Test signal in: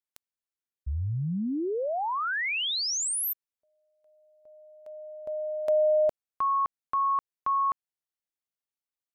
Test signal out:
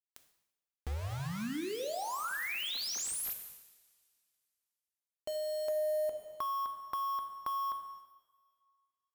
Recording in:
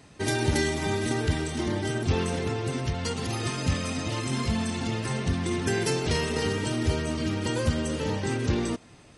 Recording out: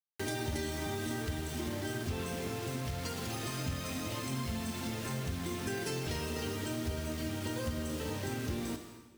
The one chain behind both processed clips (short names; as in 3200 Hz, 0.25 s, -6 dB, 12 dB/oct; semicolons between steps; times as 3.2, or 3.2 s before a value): bit-crush 6-bit; two-slope reverb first 0.83 s, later 2.5 s, from -24 dB, DRR 5.5 dB; compressor 2.5:1, threshold -34 dBFS; gain -3 dB